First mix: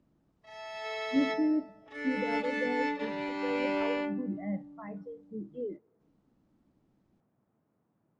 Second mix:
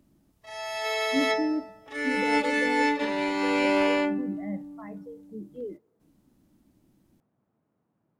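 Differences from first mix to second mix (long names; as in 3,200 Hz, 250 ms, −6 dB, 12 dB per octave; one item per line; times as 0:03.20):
background +7.5 dB
master: remove high-frequency loss of the air 100 metres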